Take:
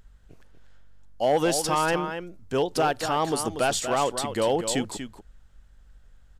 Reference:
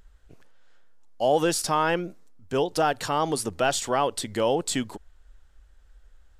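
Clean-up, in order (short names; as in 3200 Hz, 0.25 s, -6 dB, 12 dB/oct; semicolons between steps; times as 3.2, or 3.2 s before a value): clip repair -15 dBFS; de-hum 48.2 Hz, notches 5; inverse comb 0.239 s -9 dB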